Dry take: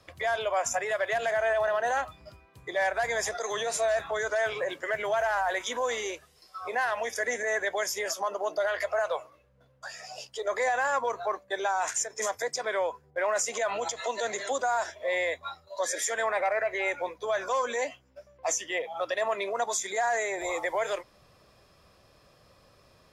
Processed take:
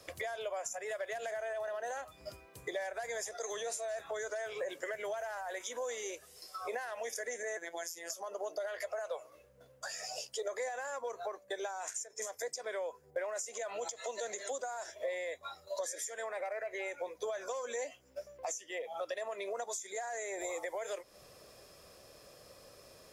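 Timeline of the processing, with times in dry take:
7.57–8.10 s: robot voice 169 Hz
whole clip: tone controls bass -6 dB, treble +9 dB; compression 12:1, threshold -39 dBFS; graphic EQ 500/1000/4000 Hz +5/-4/-4 dB; trim +2 dB

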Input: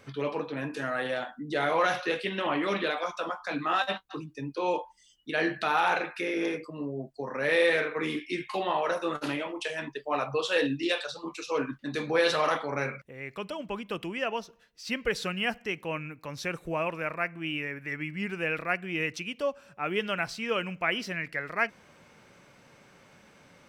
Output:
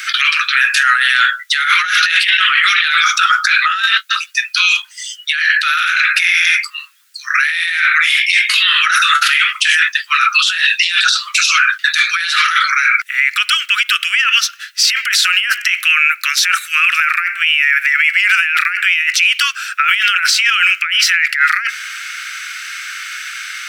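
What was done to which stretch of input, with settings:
5.39–8.74 s: high-pass 1.4 kHz 6 dB/octave
whole clip: steep high-pass 1.3 kHz 96 dB/octave; compressor with a negative ratio -41 dBFS, ratio -1; loudness maximiser +31 dB; trim -1 dB

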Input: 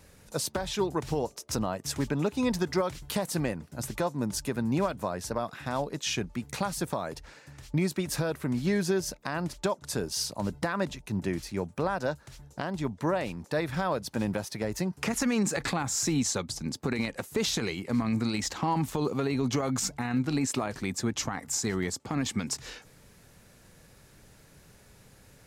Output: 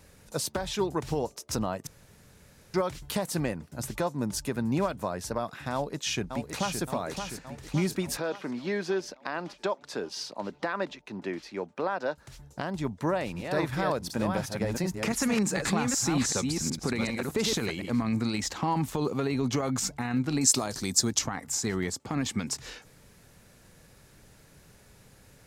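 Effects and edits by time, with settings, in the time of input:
1.87–2.74 s: room tone
5.73–6.81 s: echo throw 570 ms, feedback 60%, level -6.5 dB
8.17–12.18 s: three-band isolator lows -22 dB, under 230 Hz, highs -19 dB, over 5.2 kHz
12.97–17.90 s: chunks repeated in reverse 373 ms, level -4 dB
20.41–21.19 s: resonant high shelf 3.5 kHz +10.5 dB, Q 1.5

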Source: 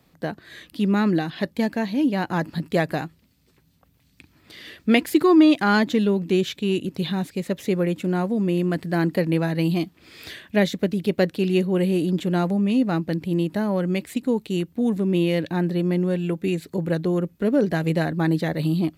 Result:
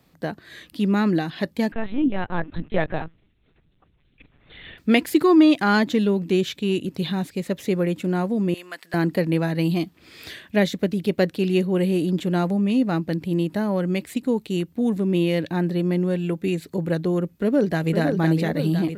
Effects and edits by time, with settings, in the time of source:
1.72–4.78 s: LPC vocoder at 8 kHz pitch kept
8.54–8.94 s: high-pass 1.1 kHz
17.29–17.93 s: echo throw 510 ms, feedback 60%, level -5.5 dB

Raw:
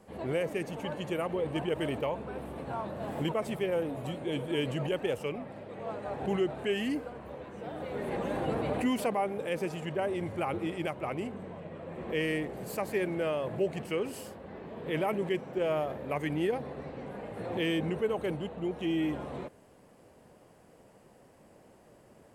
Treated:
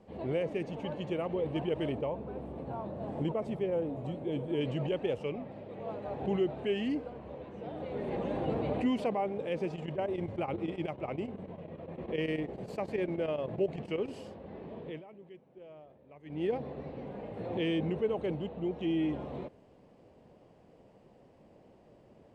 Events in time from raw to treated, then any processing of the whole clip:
1.92–4.61 s: peaking EQ 3.2 kHz -6.5 dB 2.2 oct
9.68–14.16 s: square tremolo 10 Hz, depth 65%, duty 80%
14.75–16.51 s: dip -20 dB, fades 0.27 s
whole clip: low-pass 3.6 kHz 12 dB/octave; peaking EQ 1.5 kHz -8.5 dB 1.2 oct

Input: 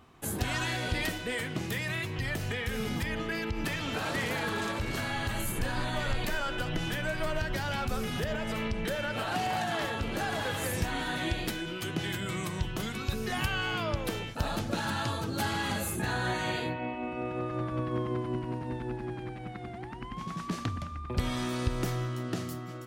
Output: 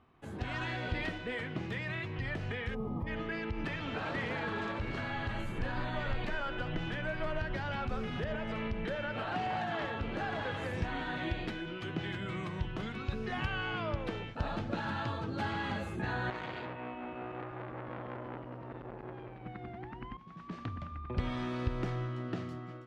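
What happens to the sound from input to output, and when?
2.75–3.07 s: time-frequency box 1.3–11 kHz -24 dB
16.30–19.46 s: transformer saturation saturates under 1.5 kHz
20.17–20.93 s: fade in, from -15.5 dB
whole clip: low-pass 2.8 kHz 12 dB/octave; level rider gain up to 4.5 dB; trim -8 dB

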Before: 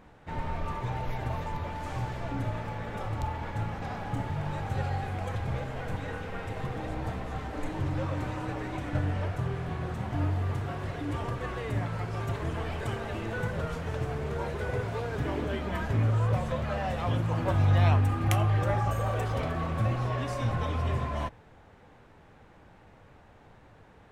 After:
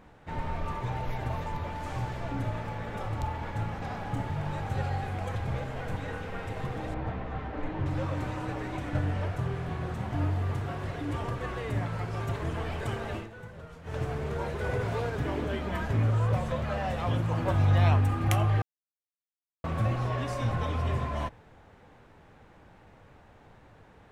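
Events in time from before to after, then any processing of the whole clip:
6.94–7.86 s: low-pass 2.9 kHz
13.15–13.97 s: dip -13 dB, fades 0.14 s
14.64–15.10 s: level flattener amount 50%
18.62–19.64 s: mute

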